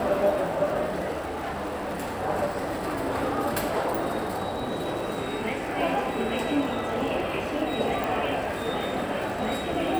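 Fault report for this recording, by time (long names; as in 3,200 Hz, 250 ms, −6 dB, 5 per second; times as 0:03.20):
surface crackle 96 per second −34 dBFS
0:01.25–0:02.20: clipping −27.5 dBFS
0:08.04: click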